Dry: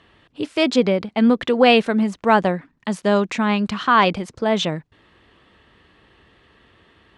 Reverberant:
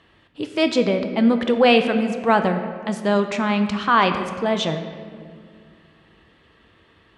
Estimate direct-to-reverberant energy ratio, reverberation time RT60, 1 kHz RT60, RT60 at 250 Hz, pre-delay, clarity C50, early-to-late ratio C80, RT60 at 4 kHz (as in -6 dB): 6.5 dB, 2.0 s, 1.8 s, 2.8 s, 6 ms, 8.5 dB, 9.5 dB, 1.2 s